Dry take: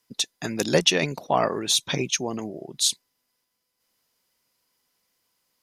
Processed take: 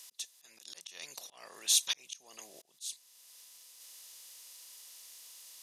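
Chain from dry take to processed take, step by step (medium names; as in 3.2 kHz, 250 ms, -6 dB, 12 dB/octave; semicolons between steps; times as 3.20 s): spectral levelling over time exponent 0.6; slow attack 678 ms; differentiator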